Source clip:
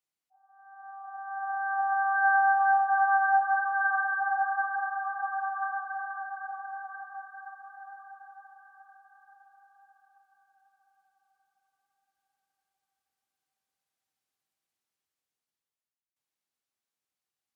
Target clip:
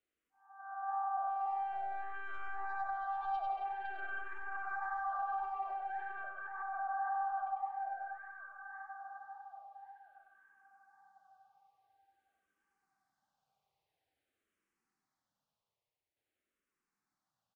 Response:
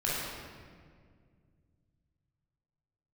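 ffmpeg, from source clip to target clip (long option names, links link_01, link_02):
-filter_complex "[0:a]asplit=2[link_01][link_02];[link_02]volume=30dB,asoftclip=hard,volume=-30dB,volume=-7dB[link_03];[link_01][link_03]amix=inputs=2:normalize=0,aeval=exprs='0.211*(cos(1*acos(clip(val(0)/0.211,-1,1)))-cos(1*PI/2))+0.0335*(cos(3*acos(clip(val(0)/0.211,-1,1)))-cos(3*PI/2))+0.0188*(cos(4*acos(clip(val(0)/0.211,-1,1)))-cos(4*PI/2))+0.00596*(cos(6*acos(clip(val(0)/0.211,-1,1)))-cos(6*PI/2))+0.00119*(cos(7*acos(clip(val(0)/0.211,-1,1)))-cos(7*PI/2))':channel_layout=same,flanger=delay=4.7:depth=6.1:regen=77:speed=1.8:shape=sinusoidal,acompressor=threshold=-44dB:ratio=6,asettb=1/sr,asplit=3[link_04][link_05][link_06];[link_04]atrim=end=6.244[link_07];[link_05]atrim=start=6.24:end=7.15,asetpts=PTS-STARTPTS,afade=type=in:duration=0.004:curve=qsin,afade=type=out:start_time=0.906:duration=0.004:curve=qsin,equalizer=frequency=680:width_type=o:width=1.1:gain=9[link_08];[link_06]atrim=start=7.146[link_09];[link_07][link_08]acrossfade=duration=0.004:curve1=hsin:curve2=qsin[link_10];[link_10][link_09]acrossfade=duration=0.004:curve1=qsin:curve2=hsin,aecho=1:1:98|196|294|392|490:0.596|0.232|0.0906|0.0353|0.0138,alimiter=level_in=19.5dB:limit=-24dB:level=0:latency=1:release=111,volume=-19.5dB,lowpass=frequency=1300:poles=1,asplit=2[link_11][link_12];[link_12]afreqshift=-0.49[link_13];[link_11][link_13]amix=inputs=2:normalize=1,volume=17dB"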